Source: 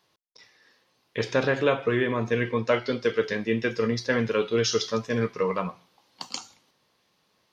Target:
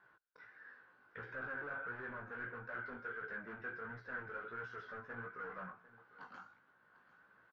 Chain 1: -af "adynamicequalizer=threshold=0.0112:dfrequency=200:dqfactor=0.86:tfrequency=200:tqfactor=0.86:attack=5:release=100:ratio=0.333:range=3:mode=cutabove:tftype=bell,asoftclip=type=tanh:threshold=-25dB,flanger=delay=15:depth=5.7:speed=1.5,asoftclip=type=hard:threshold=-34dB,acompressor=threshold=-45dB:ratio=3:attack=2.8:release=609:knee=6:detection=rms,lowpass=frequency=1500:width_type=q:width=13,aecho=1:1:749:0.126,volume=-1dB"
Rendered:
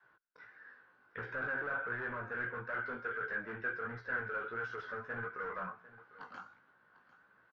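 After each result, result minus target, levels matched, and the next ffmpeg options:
downward compressor: peak gain reduction −4.5 dB; soft clipping: distortion −6 dB; 250 Hz band −2.5 dB
-af "adynamicequalizer=threshold=0.0112:dfrequency=200:dqfactor=0.86:tfrequency=200:tqfactor=0.86:attack=5:release=100:ratio=0.333:range=3:mode=cutabove:tftype=bell,asoftclip=type=tanh:threshold=-25dB,flanger=delay=15:depth=5.7:speed=1.5,asoftclip=type=hard:threshold=-34dB,acompressor=threshold=-51.5dB:ratio=3:attack=2.8:release=609:knee=6:detection=rms,lowpass=frequency=1500:width_type=q:width=13,aecho=1:1:749:0.126,volume=-1dB"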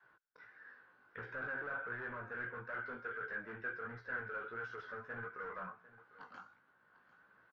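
soft clipping: distortion −6 dB; 250 Hz band −2.5 dB
-af "adynamicequalizer=threshold=0.0112:dfrequency=200:dqfactor=0.86:tfrequency=200:tqfactor=0.86:attack=5:release=100:ratio=0.333:range=3:mode=cutabove:tftype=bell,asoftclip=type=tanh:threshold=-33.5dB,flanger=delay=15:depth=5.7:speed=1.5,asoftclip=type=hard:threshold=-34dB,acompressor=threshold=-51.5dB:ratio=3:attack=2.8:release=609:knee=6:detection=rms,lowpass=frequency=1500:width_type=q:width=13,aecho=1:1:749:0.126,volume=-1dB"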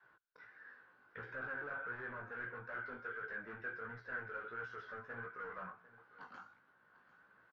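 250 Hz band −3.0 dB
-af "asoftclip=type=tanh:threshold=-33.5dB,flanger=delay=15:depth=5.7:speed=1.5,asoftclip=type=hard:threshold=-34dB,acompressor=threshold=-51.5dB:ratio=3:attack=2.8:release=609:knee=6:detection=rms,lowpass=frequency=1500:width_type=q:width=13,aecho=1:1:749:0.126,volume=-1dB"

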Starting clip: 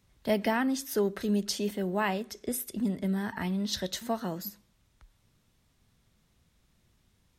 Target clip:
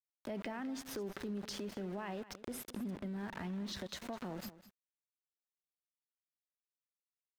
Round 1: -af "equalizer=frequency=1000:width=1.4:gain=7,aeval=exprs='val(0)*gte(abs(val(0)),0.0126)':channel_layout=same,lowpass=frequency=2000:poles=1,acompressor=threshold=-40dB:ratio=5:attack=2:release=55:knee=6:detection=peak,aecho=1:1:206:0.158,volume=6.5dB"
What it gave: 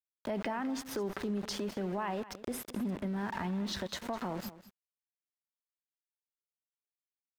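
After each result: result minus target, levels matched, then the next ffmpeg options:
downward compressor: peak gain reduction −4.5 dB; 1,000 Hz band +3.0 dB
-af "equalizer=frequency=1000:width=1.4:gain=7,aeval=exprs='val(0)*gte(abs(val(0)),0.0126)':channel_layout=same,lowpass=frequency=2000:poles=1,acompressor=threshold=-47.5dB:ratio=5:attack=2:release=55:knee=6:detection=peak,aecho=1:1:206:0.158,volume=6.5dB"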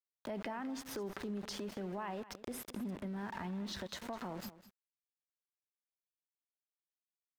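1,000 Hz band +3.0 dB
-af "aeval=exprs='val(0)*gte(abs(val(0)),0.0126)':channel_layout=same,lowpass=frequency=2000:poles=1,acompressor=threshold=-47.5dB:ratio=5:attack=2:release=55:knee=6:detection=peak,aecho=1:1:206:0.158,volume=6.5dB"

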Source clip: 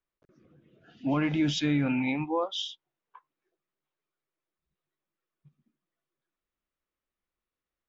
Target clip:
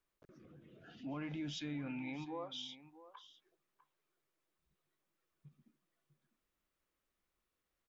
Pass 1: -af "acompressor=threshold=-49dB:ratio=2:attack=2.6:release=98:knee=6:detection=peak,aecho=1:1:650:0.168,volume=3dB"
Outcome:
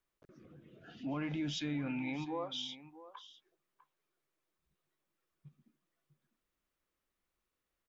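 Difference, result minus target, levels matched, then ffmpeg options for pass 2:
downward compressor: peak gain reduction −5 dB
-af "acompressor=threshold=-59dB:ratio=2:attack=2.6:release=98:knee=6:detection=peak,aecho=1:1:650:0.168,volume=3dB"

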